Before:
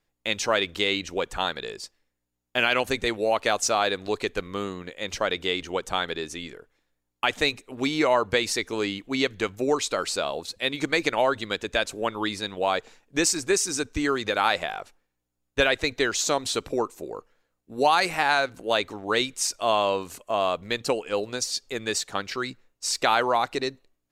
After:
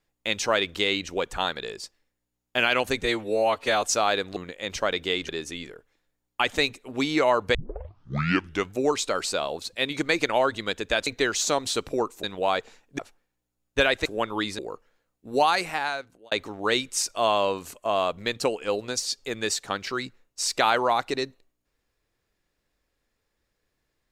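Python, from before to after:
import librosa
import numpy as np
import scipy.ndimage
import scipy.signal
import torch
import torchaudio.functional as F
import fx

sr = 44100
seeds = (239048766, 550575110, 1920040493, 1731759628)

y = fx.edit(x, sr, fx.stretch_span(start_s=3.03, length_s=0.53, factor=1.5),
    fx.cut(start_s=4.1, length_s=0.65),
    fx.cut(start_s=5.67, length_s=0.45),
    fx.tape_start(start_s=8.38, length_s=1.16),
    fx.swap(start_s=11.9, length_s=0.53, other_s=15.86, other_length_s=1.17),
    fx.cut(start_s=13.18, length_s=1.61),
    fx.fade_out_span(start_s=17.81, length_s=0.95), tone=tone)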